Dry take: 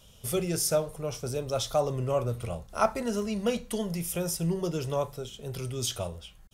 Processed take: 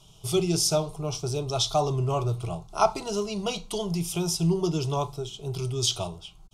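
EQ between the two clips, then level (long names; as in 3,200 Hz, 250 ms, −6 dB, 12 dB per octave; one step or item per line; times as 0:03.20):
dynamic equaliser 4,000 Hz, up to +7 dB, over −48 dBFS, Q 0.85
high-frequency loss of the air 50 metres
phaser with its sweep stopped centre 350 Hz, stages 8
+6.0 dB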